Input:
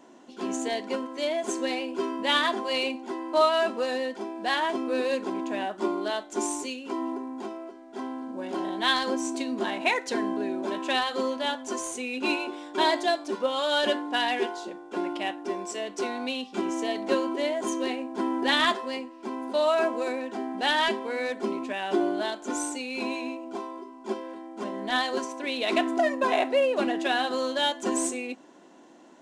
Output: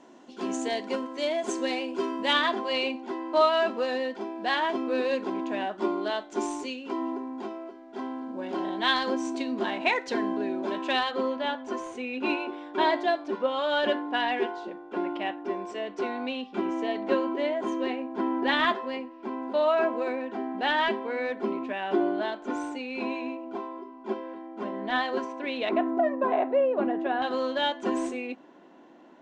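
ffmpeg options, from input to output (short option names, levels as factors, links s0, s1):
-af "asetnsamples=n=441:p=0,asendcmd='2.33 lowpass f 4500;11.11 lowpass f 2700;25.69 lowpass f 1200;27.22 lowpass f 3100',lowpass=7300"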